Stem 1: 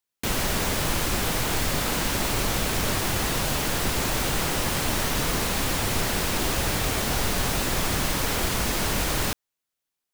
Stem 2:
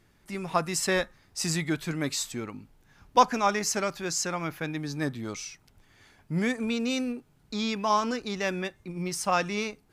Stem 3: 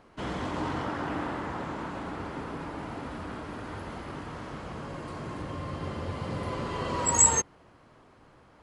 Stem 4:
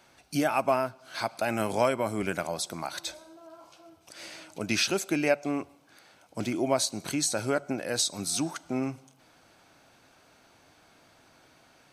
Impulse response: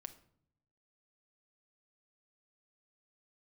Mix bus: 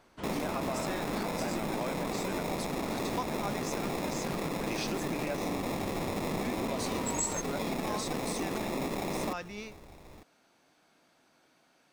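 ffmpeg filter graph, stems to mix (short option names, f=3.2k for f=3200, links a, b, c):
-filter_complex "[0:a]acrusher=samples=29:mix=1:aa=0.000001,volume=-5dB,asplit=2[a][b];[b]volume=-21.5dB[c];[1:a]volume=-12dB[d];[2:a]volume=-7.5dB[e];[3:a]volume=-9.5dB,asplit=2[f][g];[g]volume=-7.5dB[h];[a][f]amix=inputs=2:normalize=0,lowshelf=f=130:t=q:w=1.5:g=-11,alimiter=limit=-23dB:level=0:latency=1:release=34,volume=0dB[i];[4:a]atrim=start_sample=2205[j];[h][j]afir=irnorm=-1:irlink=0[k];[c]aecho=0:1:901:1[l];[d][e][i][k][l]amix=inputs=5:normalize=0,acompressor=threshold=-30dB:ratio=3"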